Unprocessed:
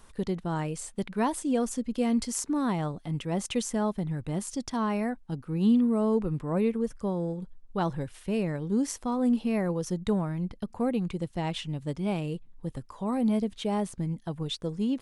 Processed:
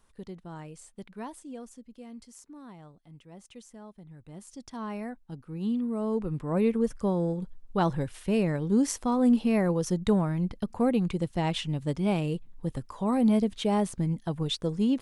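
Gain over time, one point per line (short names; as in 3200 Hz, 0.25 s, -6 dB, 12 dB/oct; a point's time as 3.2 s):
1.15 s -11.5 dB
2.05 s -19 dB
3.94 s -19 dB
4.91 s -7 dB
5.77 s -7 dB
6.81 s +3 dB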